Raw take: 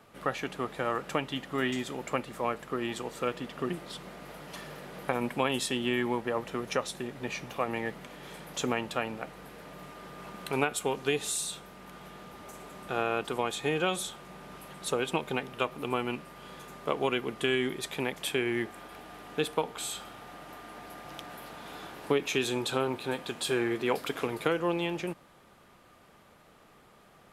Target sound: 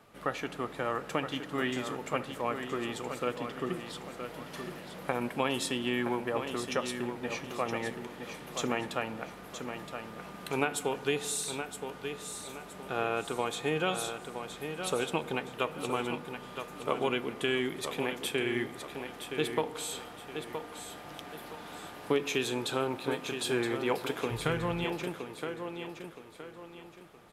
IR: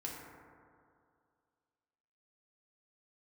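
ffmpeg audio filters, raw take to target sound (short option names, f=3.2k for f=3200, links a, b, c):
-filter_complex "[0:a]aecho=1:1:969|1938|2907|3876:0.398|0.139|0.0488|0.0171,asplit=3[a][b][c];[a]afade=t=out:st=24.3:d=0.02[d];[b]asubboost=boost=11.5:cutoff=89,afade=t=in:st=24.3:d=0.02,afade=t=out:st=24.84:d=0.02[e];[c]afade=t=in:st=24.84:d=0.02[f];[d][e][f]amix=inputs=3:normalize=0,asplit=2[g][h];[1:a]atrim=start_sample=2205[i];[h][i]afir=irnorm=-1:irlink=0,volume=-11.5dB[j];[g][j]amix=inputs=2:normalize=0,volume=-3dB"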